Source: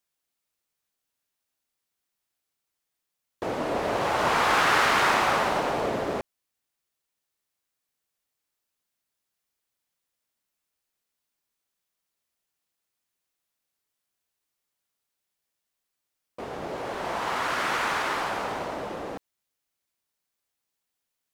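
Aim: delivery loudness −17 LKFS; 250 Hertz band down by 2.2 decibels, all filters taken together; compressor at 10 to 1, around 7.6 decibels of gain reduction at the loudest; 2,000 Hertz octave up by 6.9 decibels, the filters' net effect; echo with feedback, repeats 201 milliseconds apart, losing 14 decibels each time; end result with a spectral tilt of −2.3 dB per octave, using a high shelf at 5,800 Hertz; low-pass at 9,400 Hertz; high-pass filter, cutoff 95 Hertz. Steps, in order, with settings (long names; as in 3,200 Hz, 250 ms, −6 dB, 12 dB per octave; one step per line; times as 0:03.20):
high-pass filter 95 Hz
low-pass filter 9,400 Hz
parametric band 250 Hz −3 dB
parametric band 2,000 Hz +8 dB
high-shelf EQ 5,800 Hz +7 dB
downward compressor 10 to 1, threshold −21 dBFS
repeating echo 201 ms, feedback 20%, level −14 dB
level +8.5 dB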